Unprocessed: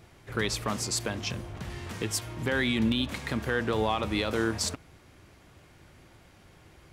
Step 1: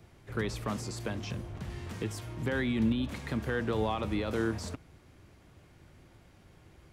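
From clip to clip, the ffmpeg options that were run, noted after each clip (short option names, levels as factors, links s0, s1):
-filter_complex "[0:a]lowshelf=f=480:g=5.5,acrossover=split=170|770|2100[s0][s1][s2][s3];[s3]alimiter=level_in=2:limit=0.0631:level=0:latency=1:release=17,volume=0.501[s4];[s0][s1][s2][s4]amix=inputs=4:normalize=0,volume=0.501"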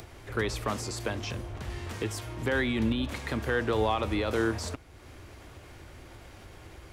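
-af "equalizer=f=170:w=1.4:g=-10.5,acompressor=mode=upward:threshold=0.00562:ratio=2.5,volume=1.88"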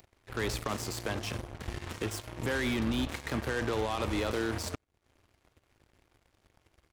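-filter_complex "[0:a]asplit=2[s0][s1];[s1]adelay=93.29,volume=0.1,highshelf=f=4000:g=-2.1[s2];[s0][s2]amix=inputs=2:normalize=0,alimiter=limit=0.0708:level=0:latency=1:release=18,aeval=exprs='0.0708*(cos(1*acos(clip(val(0)/0.0708,-1,1)))-cos(1*PI/2))+0.01*(cos(7*acos(clip(val(0)/0.0708,-1,1)))-cos(7*PI/2))':c=same"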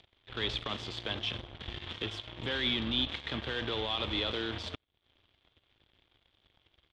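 -af "lowpass=f=3400:t=q:w=7.6,volume=0.562"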